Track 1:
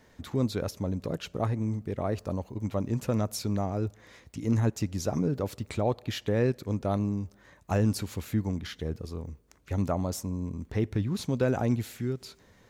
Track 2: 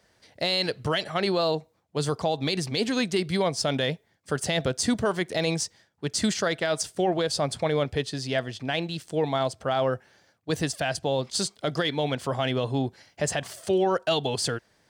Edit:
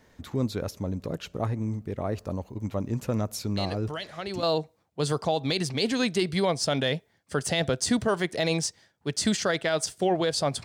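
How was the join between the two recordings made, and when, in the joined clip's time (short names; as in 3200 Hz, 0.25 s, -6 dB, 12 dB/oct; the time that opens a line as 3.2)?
track 1
3.57 add track 2 from 0.54 s 0.86 s -9 dB
4.43 switch to track 2 from 1.4 s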